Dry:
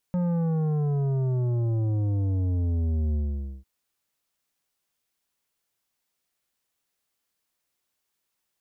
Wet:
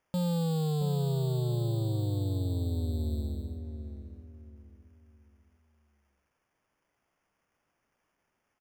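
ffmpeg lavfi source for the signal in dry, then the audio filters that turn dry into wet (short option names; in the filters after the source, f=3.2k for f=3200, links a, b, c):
-f lavfi -i "aevalsrc='0.0668*clip((3.5-t)/0.5,0,1)*tanh(3.16*sin(2*PI*180*3.5/log(65/180)*(exp(log(65/180)*t/3.5)-1)))/tanh(3.16)':d=3.5:s=44100"
-filter_complex "[0:a]lowshelf=f=160:g=-9,acrusher=samples=11:mix=1:aa=0.000001,asplit=2[a][b];[b]adelay=673,lowpass=f=1k:p=1,volume=-8dB,asplit=2[c][d];[d]adelay=673,lowpass=f=1k:p=1,volume=0.33,asplit=2[e][f];[f]adelay=673,lowpass=f=1k:p=1,volume=0.33,asplit=2[g][h];[h]adelay=673,lowpass=f=1k:p=1,volume=0.33[i];[a][c][e][g][i]amix=inputs=5:normalize=0"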